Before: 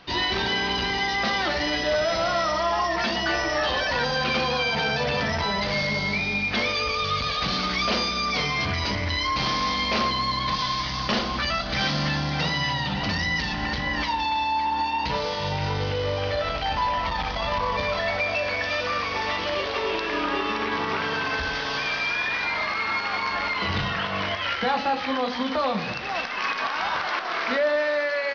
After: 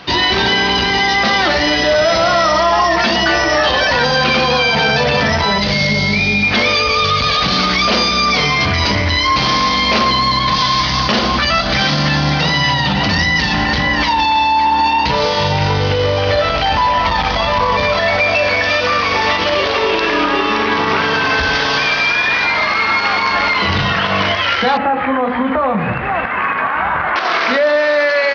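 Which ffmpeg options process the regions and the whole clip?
-filter_complex "[0:a]asettb=1/sr,asplit=3[a][b][c];[a]atrim=end=5.584[d];[b]atrim=start=5.58:end=6.43,asetpts=PTS-STARTPTS,afade=t=in:d=0.004:c=qsin,afade=t=out:st=0.846:d=0.004:c=qsin,equalizer=f=1.1k:t=o:w=2.1:g=-7.5,asplit=2[e][f];[f]adelay=19,volume=-11dB[g];[e][g]amix=inputs=2:normalize=0,atrim=end_sample=37485[h];[c]atrim=start=6.426[i];[d][h]acrossfade=d=0.004:c1=hsin:c2=qsin[j];[j][i]acrossfade=d=0.004:c1=qsin:c2=hsin,asettb=1/sr,asplit=3[k][l][m];[k]atrim=end=24.774[n];[l]atrim=start=24.77:end=27.16,asetpts=PTS-STARTPTS,afade=t=in:d=0.004:c=qsin,afade=t=out:st=2.386:d=0.004:c=qsin,lowpass=f=2.1k:w=0.5412,lowpass=f=2.1k:w=1.3066,asubboost=boost=4:cutoff=190,acompressor=threshold=-27dB:ratio=2.5:attack=3.2:release=140:knee=1:detection=peak[o];[m]atrim=start=27.156[p];[n][o]acrossfade=d=0.004:c1=hsin:c2=qsin[q];[q][p]acrossfade=d=0.004:c1=qsin:c2=hsin,highpass=51,alimiter=level_in=19dB:limit=-1dB:release=50:level=0:latency=1,volume=-5dB"

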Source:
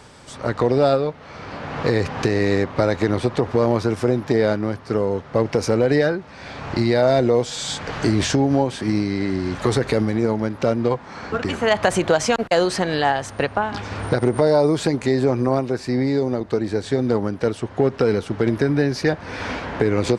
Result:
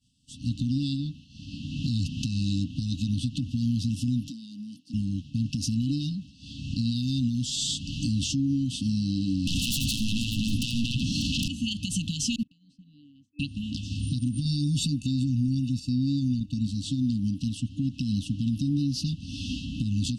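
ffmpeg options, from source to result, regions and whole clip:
-filter_complex "[0:a]asettb=1/sr,asplit=3[a][b][c];[a]atrim=end=4.284[d];[b]atrim=start=4.28:end=4.94,asetpts=PTS-STARTPTS,afade=t=in:d=0.004:c=qsin,afade=t=out:st=0.656:d=0.004:c=qsin,highpass=f=200:w=0.5412,highpass=f=200:w=1.3066,highshelf=f=9k:g=5.5,acompressor=threshold=-29dB:ratio=5:attack=3.2:release=140:knee=1:detection=peak[e];[c]atrim=start=4.936[f];[d][e]acrossfade=d=0.004:c1=hsin:c2=qsin[g];[g][f]acrossfade=d=0.004:c1=qsin:c2=hsin,asettb=1/sr,asplit=3[h][i][j];[h]atrim=end=9.474[k];[i]atrim=start=9.47:end=11.48,asetpts=PTS-STARTPTS,afade=t=in:d=0.004:c=qsin,afade=t=out:st=2.006:d=0.004:c=qsin,acompressor=threshold=-21dB:ratio=2.5:attack=3.2:release=140:knee=1:detection=peak,aeval=exprs='0.355*sin(PI/2*10*val(0)/0.355)':c=same,aecho=1:1:84|591:0.335|0.15,atrim=end_sample=88641[l];[j]atrim=start=11.476[m];[k][l]acrossfade=d=0.004:c1=hsin:c2=qsin[n];[n][m]acrossfade=d=0.004:c1=qsin:c2=hsin,asettb=1/sr,asplit=3[o][p][q];[o]atrim=end=12.434[r];[p]atrim=start=12.43:end=13.39,asetpts=PTS-STARTPTS,afade=t=in:d=0.004:c=qsin,afade=t=out:st=0.956:d=0.004:c=qsin,bandpass=f=470:t=q:w=4.8,acompressor=threshold=-29dB:ratio=12:attack=3.2:release=140:knee=1:detection=peak[s];[q]atrim=start=13.386[t];[r][s]acrossfade=d=0.004:c1=hsin:c2=qsin[u];[u][t]acrossfade=d=0.004:c1=qsin:c2=hsin,asettb=1/sr,asplit=3[v][w][x];[v]atrim=end=14.454[y];[w]atrim=start=14.45:end=16.67,asetpts=PTS-STARTPTS,afade=t=in:d=0.004:c=qsin,afade=t=out:st=2.216:d=0.004:c=qsin,agate=range=-8dB:threshold=-32dB:ratio=16:release=100:detection=peak,aecho=1:1:1.1:0.88,atrim=end_sample=97902[z];[x]atrim=start=16.666[aa];[y][z]acrossfade=d=0.004:c1=hsin:c2=qsin[ab];[ab][aa]acrossfade=d=0.004:c1=qsin:c2=hsin,agate=range=-33dB:threshold=-32dB:ratio=3:detection=peak,afftfilt=real='re*(1-between(b*sr/4096,300,2600))':imag='im*(1-between(b*sr/4096,300,2600))':win_size=4096:overlap=0.75,alimiter=limit=-18.5dB:level=0:latency=1:release=173"

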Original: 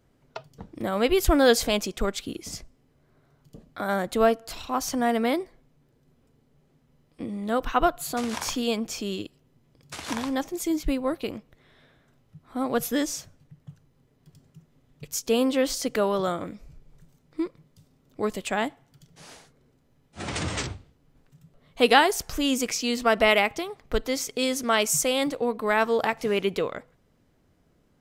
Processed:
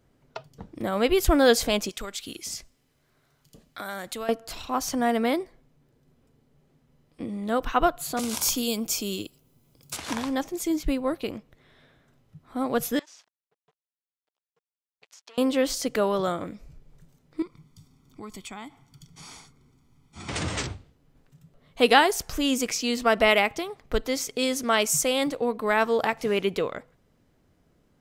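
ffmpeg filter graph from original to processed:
-filter_complex "[0:a]asettb=1/sr,asplit=3[a][b][c];[a]atrim=end=1.894[d];[b]atrim=start=1.89:end=4.29,asetpts=PTS-STARTPTS,afade=t=in:d=0.004:c=qsin,afade=t=out:st=2.396:d=0.004:c=qsin,tiltshelf=f=1.4k:g=-7,acompressor=threshold=-30dB:ratio=5:attack=3.2:release=140:knee=1:detection=peak[e];[c]atrim=start=4.286[f];[d][e]acrossfade=d=0.004:c1=hsin:c2=qsin[g];[g][f]acrossfade=d=0.004:c1=qsin:c2=hsin,asettb=1/sr,asplit=3[h][i][j];[h]atrim=end=8.194[k];[i]atrim=start=8.19:end=9.97,asetpts=PTS-STARTPTS,afade=t=in:d=0.004:c=qsin,afade=t=out:st=1.776:d=0.004:c=qsin,aemphasis=mode=production:type=50fm,bandreject=f=1.8k:w=5.5,acrossover=split=470|3000[l][m][n];[m]acompressor=threshold=-37dB:ratio=6:attack=3.2:release=140:knee=2.83:detection=peak[o];[l][o][n]amix=inputs=3:normalize=0[p];[j]atrim=start=9.966[q];[k][p]acrossfade=d=0.004:c1=hsin:c2=qsin[r];[r][q]acrossfade=d=0.004:c1=qsin:c2=hsin,asettb=1/sr,asplit=3[s][t][u];[s]atrim=end=12.994[v];[t]atrim=start=12.99:end=15.38,asetpts=PTS-STARTPTS,afade=t=in:d=0.004:c=qsin,afade=t=out:st=2.386:d=0.004:c=qsin,acompressor=threshold=-36dB:ratio=16:attack=3.2:release=140:knee=1:detection=peak,aeval=exprs='sgn(val(0))*max(abs(val(0))-0.00501,0)':c=same,highpass=760,lowpass=4.9k[w];[u]atrim=start=15.376[x];[v][w]acrossfade=d=0.004:c1=hsin:c2=qsin[y];[y][x]acrossfade=d=0.004:c1=qsin:c2=hsin,asettb=1/sr,asplit=3[z][aa][ab];[z]atrim=end=17.424[ac];[aa]atrim=start=17.42:end=20.29,asetpts=PTS-STARTPTS,afade=t=in:d=0.004:c=qsin,afade=t=out:st=2.866:d=0.004:c=qsin,equalizer=f=5.9k:w=0.88:g=4,aecho=1:1:0.9:0.7,atrim=end_sample=126567,acompressor=threshold=-40dB:ratio=3:attack=3.2:release=140:knee=1:detection=peak[ad];[ab]atrim=start=20.286[ae];[ac][ad]acrossfade=d=0.004:c1=hsin:c2=qsin[af];[af][ae]acrossfade=d=0.004:c1=qsin:c2=hsin"

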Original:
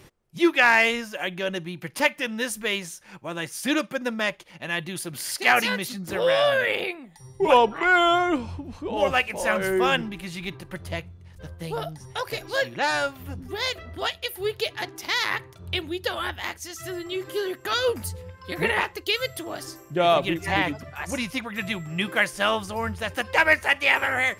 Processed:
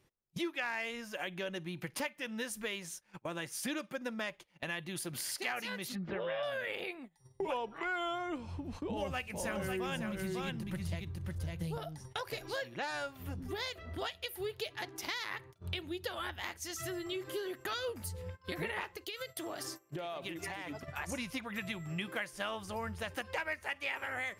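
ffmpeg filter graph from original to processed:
-filter_complex "[0:a]asettb=1/sr,asplit=3[a][b][c];[a]atrim=end=5.954[d];[b]atrim=start=5.95:end=6.43,asetpts=PTS-STARTPTS,afade=t=in:d=0.004:c=qsin,afade=t=out:st=0.476:d=0.004:c=qsin,lowpass=f=3k:w=0.5412,lowpass=f=3k:w=1.3066,aecho=1:1:5:0.43,atrim=end_sample=21168[e];[c]atrim=start=6.426[f];[d][e]acrossfade=d=0.004:c1=hsin:c2=qsin[g];[g][f]acrossfade=d=0.004:c1=qsin:c2=hsin,asettb=1/sr,asplit=3[h][i][j];[h]atrim=end=8.894[k];[i]atrim=start=8.89:end=11.78,asetpts=PTS-STARTPTS,afade=t=in:d=0.004:c=qsin,afade=t=out:st=2.886:d=0.004:c=qsin,highpass=44,bass=f=250:g=12,treble=f=4k:g=5,aecho=1:1:550:0.562,atrim=end_sample=127449[l];[j]atrim=start=11.776[m];[k][l]acrossfade=d=0.004:c1=hsin:c2=qsin[n];[n][m]acrossfade=d=0.004:c1=qsin:c2=hsin,asettb=1/sr,asplit=3[o][p][q];[o]atrim=end=18.974[r];[p]atrim=start=18.97:end=20.88,asetpts=PTS-STARTPTS,afade=t=in:d=0.004:c=qsin,afade=t=out:st=1.906:d=0.004:c=qsin,lowshelf=f=140:g=-10,acompressor=threshold=-33dB:ratio=12:attack=3.2:release=140:knee=1:detection=peak,aecho=1:1:922:0.0891,atrim=end_sample=84231[s];[q]atrim=start=20.876[t];[r][s]acrossfade=d=0.004:c1=hsin:c2=qsin[u];[u][t]acrossfade=d=0.004:c1=qsin:c2=hsin,agate=range=-21dB:threshold=-41dB:ratio=16:detection=peak,acompressor=threshold=-38dB:ratio=4"

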